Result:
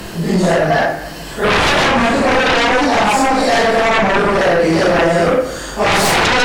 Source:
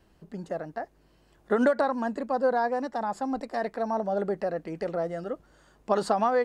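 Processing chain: phase randomisation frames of 200 ms; treble shelf 2 kHz +8.5 dB; in parallel at +1.5 dB: compression, threshold -35 dBFS, peak gain reduction 16 dB; on the sum: sine folder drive 13 dB, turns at -12 dBFS; reverberation RT60 1.1 s, pre-delay 6 ms, DRR 7 dB; three bands compressed up and down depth 40%; trim +1.5 dB

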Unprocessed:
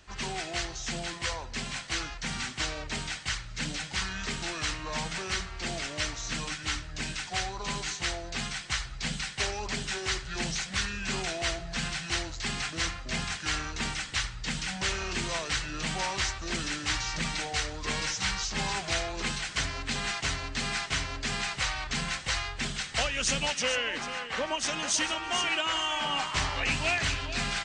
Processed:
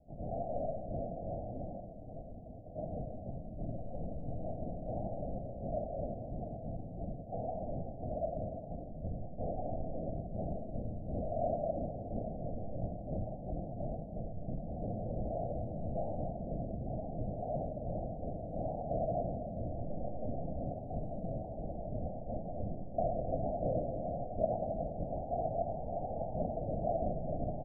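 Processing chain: two-band feedback delay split 400 Hz, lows 389 ms, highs 93 ms, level -5.5 dB; 1.89–2.78 s: compressor with a negative ratio -41 dBFS, ratio -1; LPC vocoder at 8 kHz whisper; steep low-pass 710 Hz 96 dB/octave; comb 1.3 ms, depth 63%; on a send at -10 dB: reverberation RT60 2.0 s, pre-delay 47 ms; on the sum: flange 1.7 Hz, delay 3.4 ms, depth 7.2 ms, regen -63%; bass shelf 160 Hz -11.5 dB; trim +5.5 dB

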